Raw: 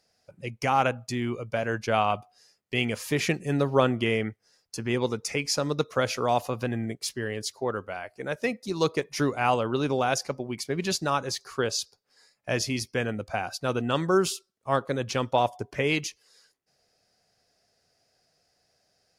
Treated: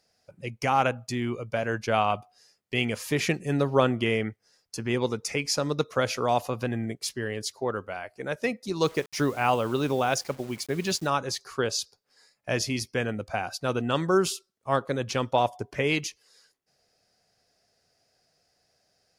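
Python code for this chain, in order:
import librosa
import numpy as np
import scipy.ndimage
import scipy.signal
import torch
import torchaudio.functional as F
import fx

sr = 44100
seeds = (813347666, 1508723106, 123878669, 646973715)

y = fx.quant_dither(x, sr, seeds[0], bits=8, dither='none', at=(8.84, 11.07))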